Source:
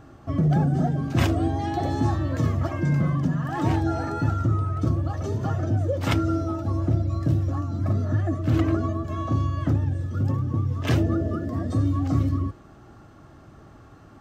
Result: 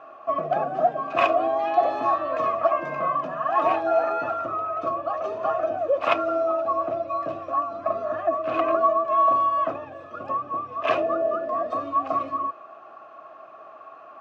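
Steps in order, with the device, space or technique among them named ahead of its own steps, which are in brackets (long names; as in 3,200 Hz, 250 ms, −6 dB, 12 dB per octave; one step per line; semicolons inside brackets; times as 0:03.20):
tin-can telephone (band-pass filter 590–2,900 Hz; hollow resonant body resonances 660/1,100/2,500 Hz, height 17 dB, ringing for 25 ms)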